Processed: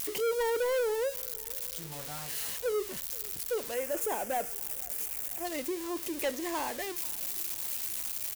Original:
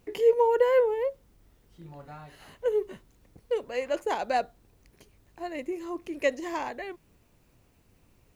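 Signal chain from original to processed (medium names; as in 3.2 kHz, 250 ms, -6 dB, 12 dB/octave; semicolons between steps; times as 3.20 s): zero-crossing glitches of -20.5 dBFS; 3.74–5.45 s: ten-band graphic EQ 125 Hz -3 dB, 1 kHz -4 dB, 4 kHz -10 dB; saturation -26.5 dBFS, distortion -9 dB; on a send: feedback delay 488 ms, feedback 59%, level -23 dB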